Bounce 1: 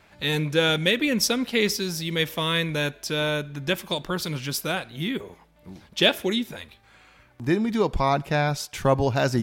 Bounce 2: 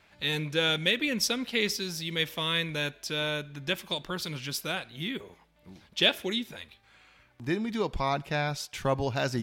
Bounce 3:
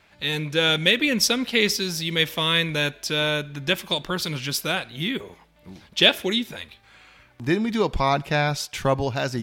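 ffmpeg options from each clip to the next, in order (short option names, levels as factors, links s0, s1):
-af "equalizer=f=3200:t=o:w=2:g=5,volume=0.422"
-af "dynaudnorm=f=110:g=11:m=1.58,volume=1.5"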